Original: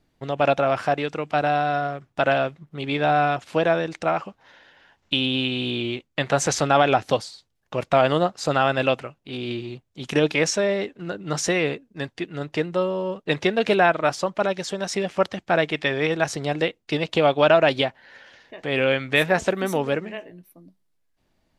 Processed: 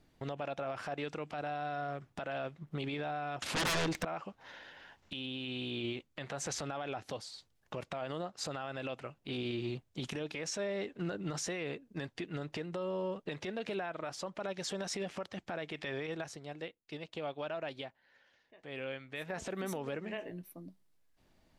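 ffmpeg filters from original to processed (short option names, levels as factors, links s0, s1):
-filter_complex "[0:a]asettb=1/sr,asplit=3[s0][s1][s2];[s0]atrim=end=3.424[s3];[s1]atrim=start=3.42:end=4.05,asetpts=PTS-STARTPTS,afade=t=in:d=0.004:c=qsin,afade=t=out:st=0.626:d=0.004:c=qsin,aeval=exprs='0.422*sin(PI/2*8.91*val(0)/0.422)':c=same[s4];[s2]atrim=start=4.046[s5];[s3][s4]acrossfade=d=0.004:c1=hsin:c2=qsin[s6];[s6][s5]acrossfade=d=0.004:c1=qsin:c2=hsin,asplit=3[s7][s8][s9];[s7]atrim=end=16.4,asetpts=PTS-STARTPTS,afade=t=out:st=15.94:d=0.46:silence=0.1[s10];[s8]atrim=start=16.4:end=19.25,asetpts=PTS-STARTPTS,volume=0.1[s11];[s9]atrim=start=19.25,asetpts=PTS-STARTPTS,afade=t=in:d=0.46:silence=0.1[s12];[s10][s11][s12]concat=n=3:v=0:a=1,acompressor=threshold=0.0251:ratio=6,alimiter=level_in=1.68:limit=0.0631:level=0:latency=1:release=37,volume=0.596"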